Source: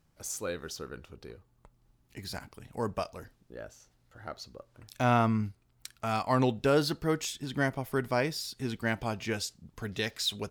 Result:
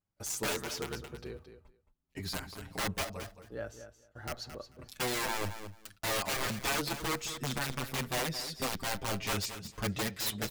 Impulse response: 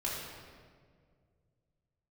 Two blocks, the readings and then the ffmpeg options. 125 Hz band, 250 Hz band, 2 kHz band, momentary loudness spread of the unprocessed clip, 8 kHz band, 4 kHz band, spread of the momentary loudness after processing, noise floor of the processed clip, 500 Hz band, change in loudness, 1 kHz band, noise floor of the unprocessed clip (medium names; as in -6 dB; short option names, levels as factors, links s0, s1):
-6.0 dB, -7.0 dB, -0.5 dB, 21 LU, +3.5 dB, +1.0 dB, 14 LU, -73 dBFS, -6.5 dB, -4.0 dB, -4.5 dB, -69 dBFS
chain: -filter_complex "[0:a]agate=range=0.0891:threshold=0.00158:ratio=16:detection=peak,highshelf=f=3400:g=-3.5,alimiter=limit=0.0708:level=0:latency=1:release=473,aeval=exprs='(mod(33.5*val(0)+1,2)-1)/33.5':c=same,asplit=2[s0][s1];[s1]aecho=0:1:220|440:0.282|0.0423[s2];[s0][s2]amix=inputs=2:normalize=0,asplit=2[s3][s4];[s4]adelay=6.9,afreqshift=0.31[s5];[s3][s5]amix=inputs=2:normalize=1,volume=2.11"